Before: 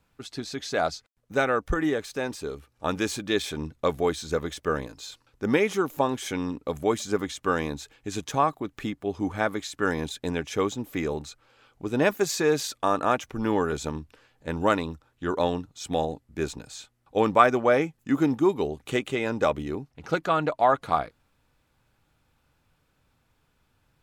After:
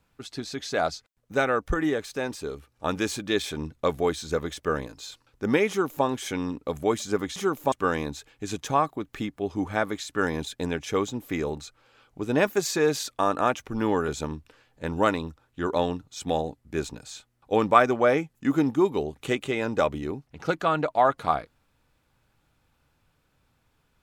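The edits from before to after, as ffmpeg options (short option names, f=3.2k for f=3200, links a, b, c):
-filter_complex "[0:a]asplit=3[a][b][c];[a]atrim=end=7.362[d];[b]atrim=start=5.688:end=6.052[e];[c]atrim=start=7.358[f];[d][e]acrossfade=d=0.004:c1=hsin:c2=hsin[g];[g][f]acrossfade=d=0.004:c1=hsin:c2=hsin"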